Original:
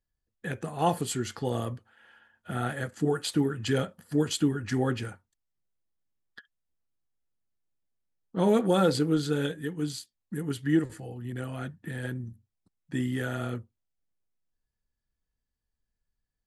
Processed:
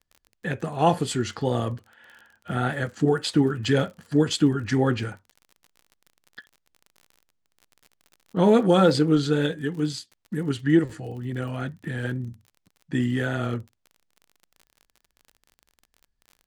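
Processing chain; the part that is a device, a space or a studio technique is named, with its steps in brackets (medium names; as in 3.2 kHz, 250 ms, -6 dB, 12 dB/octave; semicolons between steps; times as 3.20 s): lo-fi chain (low-pass 6.6 kHz 12 dB/octave; wow and flutter; crackle 38 per s -44 dBFS); trim +5.5 dB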